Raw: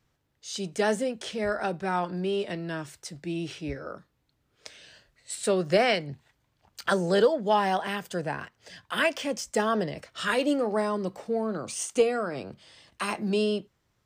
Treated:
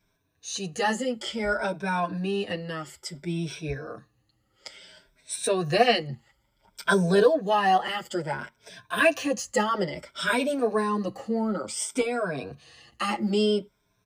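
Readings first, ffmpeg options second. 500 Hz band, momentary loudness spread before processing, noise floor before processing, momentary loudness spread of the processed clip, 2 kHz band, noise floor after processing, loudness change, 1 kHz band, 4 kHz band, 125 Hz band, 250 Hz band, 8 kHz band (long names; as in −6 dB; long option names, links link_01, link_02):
+0.5 dB, 16 LU, −74 dBFS, 15 LU, +3.0 dB, −72 dBFS, +1.5 dB, +3.0 dB, +2.5 dB, +3.0 dB, +2.0 dB, +2.5 dB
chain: -filter_complex "[0:a]afftfilt=real='re*pow(10,13/40*sin(2*PI*(1.6*log(max(b,1)*sr/1024/100)/log(2)-(0.58)*(pts-256)/sr)))':imag='im*pow(10,13/40*sin(2*PI*(1.6*log(max(b,1)*sr/1024/100)/log(2)-(0.58)*(pts-256)/sr)))':win_size=1024:overlap=0.75,asplit=2[link_01][link_02];[link_02]adelay=7.3,afreqshift=-0.43[link_03];[link_01][link_03]amix=inputs=2:normalize=1,volume=3.5dB"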